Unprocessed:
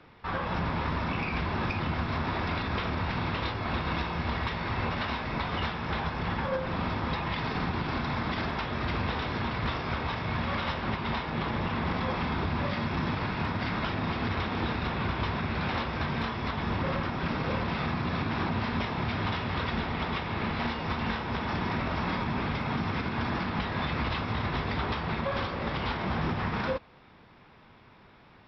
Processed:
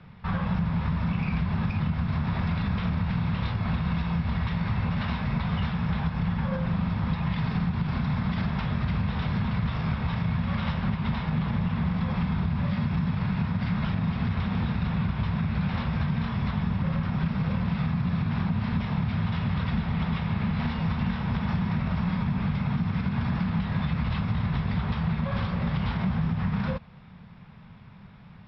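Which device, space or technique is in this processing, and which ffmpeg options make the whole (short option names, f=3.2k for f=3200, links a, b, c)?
jukebox: -af "lowpass=5.3k,lowshelf=f=240:t=q:w=3:g=8.5,acompressor=threshold=-23dB:ratio=6"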